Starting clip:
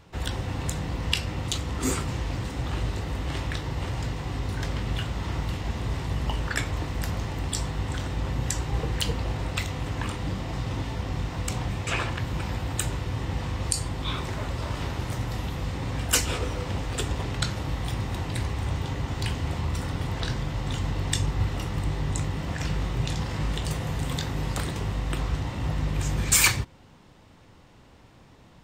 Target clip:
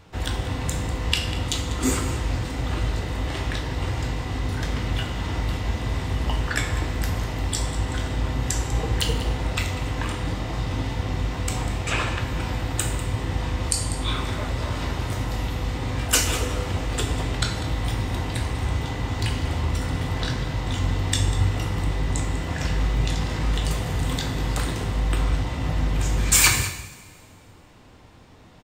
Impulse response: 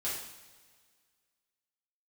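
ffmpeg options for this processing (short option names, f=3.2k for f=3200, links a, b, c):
-filter_complex "[0:a]aecho=1:1:196:0.188,asplit=2[a][b];[1:a]atrim=start_sample=2205[c];[b][c]afir=irnorm=-1:irlink=0,volume=-5.5dB[d];[a][d]amix=inputs=2:normalize=0"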